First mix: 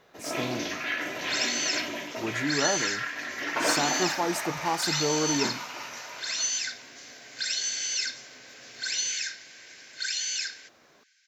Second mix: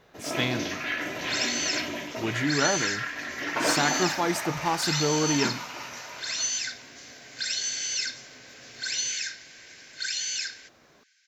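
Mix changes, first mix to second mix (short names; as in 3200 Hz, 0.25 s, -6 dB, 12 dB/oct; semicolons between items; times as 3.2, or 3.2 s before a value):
speech: remove Butterworth band-stop 2300 Hz, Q 0.69; master: add low shelf 160 Hz +10 dB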